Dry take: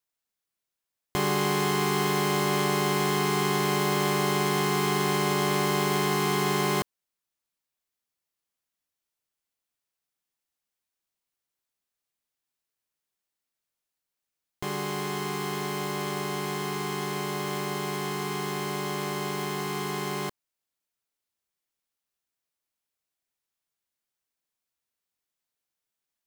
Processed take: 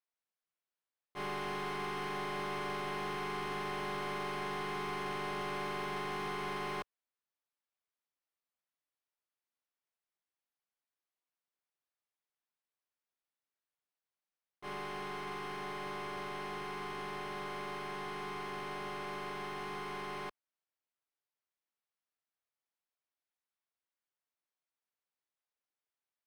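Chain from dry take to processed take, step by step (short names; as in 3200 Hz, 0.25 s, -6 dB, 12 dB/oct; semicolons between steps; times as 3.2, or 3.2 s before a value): low shelf 67 Hz +8.5 dB; notch 7100 Hz, Q 5.2; overdrive pedal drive 34 dB, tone 1400 Hz, clips at -12.5 dBFS; expander -7 dBFS; gain +4 dB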